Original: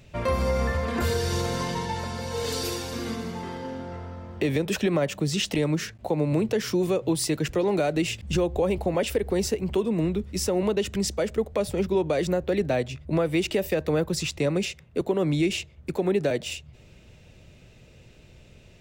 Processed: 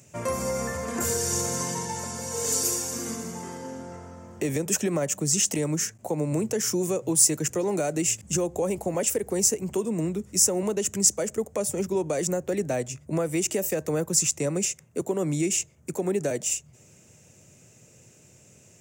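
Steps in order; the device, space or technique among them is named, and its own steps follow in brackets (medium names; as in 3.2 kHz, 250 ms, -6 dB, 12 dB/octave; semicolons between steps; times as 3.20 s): budget condenser microphone (high-pass 100 Hz 24 dB/octave; resonant high shelf 5.2 kHz +10.5 dB, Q 3); trim -2.5 dB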